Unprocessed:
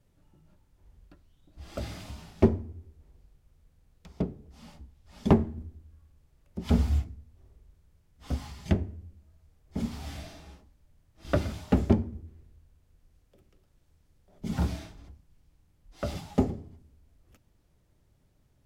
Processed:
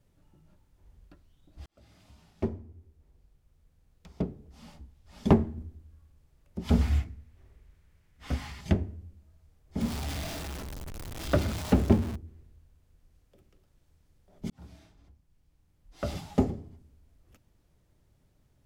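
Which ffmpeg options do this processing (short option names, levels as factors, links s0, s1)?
-filter_complex "[0:a]asettb=1/sr,asplit=3[s0][s1][s2];[s0]atrim=end=6.814[s3];[s1]atrim=start=6.81:end=8.61,asetpts=PTS-STARTPTS,afade=t=in:d=0.004:c=qsin,afade=t=out:st=1.796:d=0.004:c=qsin,equalizer=f=2000:w=1.1:g=9[s4];[s2]atrim=start=8.606[s5];[s3][s4]acrossfade=d=0.004:c1=hsin:c2=qsin[s6];[s6][s5]acrossfade=d=0.004:c1=qsin:c2=hsin,asettb=1/sr,asplit=3[s7][s8][s9];[s7]atrim=end=9.814[s10];[s8]atrim=start=9.81:end=12.16,asetpts=PTS-STARTPTS,afade=t=in:d=0.004:c=qsin,afade=t=out:st=2.346:d=0.004:c=qsin,aeval=exprs='val(0)+0.5*0.0211*sgn(val(0))':c=same[s11];[s9]atrim=start=12.156[s12];[s10][s11]acrossfade=d=0.004:c1=hsin:c2=qsin[s13];[s13][s12]acrossfade=d=0.004:c1=qsin:c2=hsin,asplit=3[s14][s15][s16];[s14]atrim=end=1.66,asetpts=PTS-STARTPTS,afade=t=out:st=1.656:d=0.004:c=hsin[s17];[s15]atrim=start=1.66:end=14.5,asetpts=PTS-STARTPTS,afade=t=in:d=3.69:c=qsin,afade=t=out:st=12.836:d=0.004:c=hsin[s18];[s16]atrim=start=14.5,asetpts=PTS-STARTPTS,afade=t=in:d=1.6[s19];[s17][s18][s19]concat=n=3:v=0:a=1"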